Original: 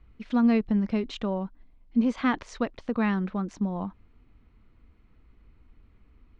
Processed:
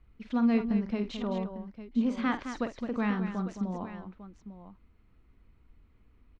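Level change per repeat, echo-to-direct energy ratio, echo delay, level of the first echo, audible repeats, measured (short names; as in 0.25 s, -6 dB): no steady repeat, -6.0 dB, 48 ms, -10.0 dB, 3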